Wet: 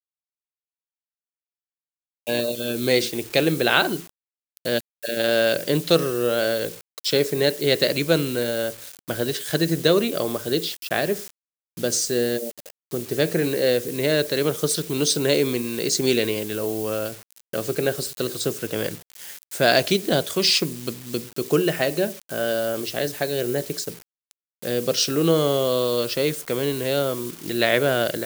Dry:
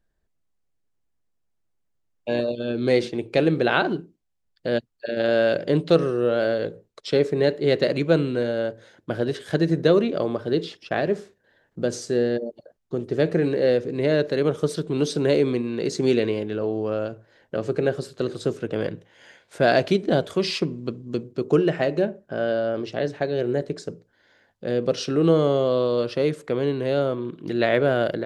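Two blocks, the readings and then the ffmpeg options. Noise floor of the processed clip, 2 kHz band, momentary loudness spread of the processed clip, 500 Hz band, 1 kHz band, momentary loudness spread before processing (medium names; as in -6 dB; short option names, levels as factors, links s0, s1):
under -85 dBFS, +3.5 dB, 11 LU, -1.0 dB, +0.5 dB, 10 LU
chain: -af "acrusher=bits=7:mix=0:aa=0.000001,crystalizer=i=5.5:c=0,volume=0.841"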